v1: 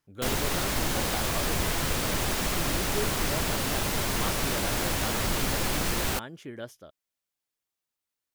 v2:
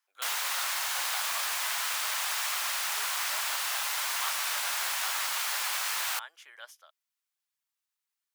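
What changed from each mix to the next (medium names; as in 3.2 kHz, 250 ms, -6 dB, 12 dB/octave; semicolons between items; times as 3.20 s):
master: add inverse Chebyshev high-pass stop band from 200 Hz, stop band 70 dB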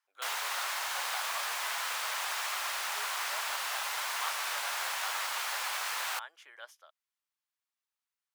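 master: add tilt EQ -2 dB/octave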